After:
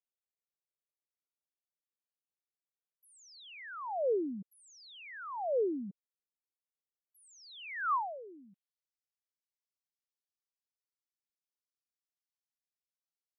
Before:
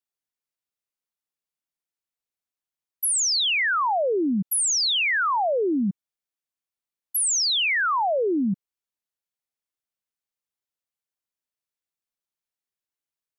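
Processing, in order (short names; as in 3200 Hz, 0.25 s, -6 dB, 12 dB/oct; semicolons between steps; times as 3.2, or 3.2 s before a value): band-pass sweep 470 Hz -> 5200 Hz, 7.39–8.86; gain -5.5 dB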